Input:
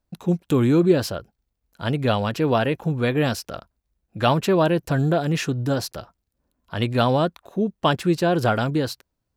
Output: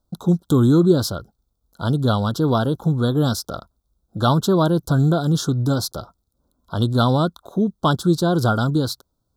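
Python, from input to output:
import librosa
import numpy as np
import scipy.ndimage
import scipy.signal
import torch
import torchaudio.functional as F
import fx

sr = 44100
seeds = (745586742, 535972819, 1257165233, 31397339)

y = fx.dynamic_eq(x, sr, hz=580.0, q=0.9, threshold_db=-34.0, ratio=4.0, max_db=-7)
y = scipy.signal.sosfilt(scipy.signal.ellip(3, 1.0, 50, [1400.0, 3500.0], 'bandstop', fs=sr, output='sos'), y)
y = y * 10.0 ** (5.5 / 20.0)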